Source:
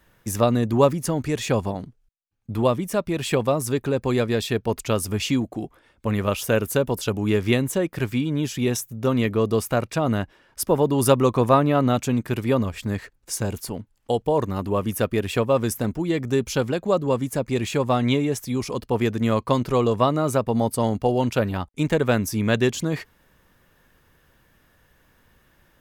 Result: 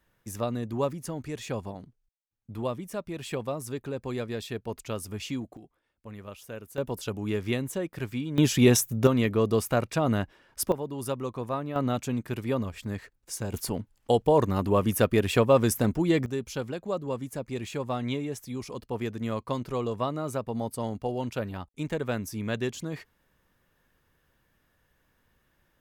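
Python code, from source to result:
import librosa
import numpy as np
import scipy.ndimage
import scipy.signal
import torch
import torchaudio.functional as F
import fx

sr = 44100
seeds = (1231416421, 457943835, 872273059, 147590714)

y = fx.gain(x, sr, db=fx.steps((0.0, -11.0), (5.57, -19.5), (6.78, -8.5), (8.38, 4.0), (9.07, -3.0), (10.72, -14.5), (11.76, -7.5), (13.54, 0.0), (16.26, -10.0)))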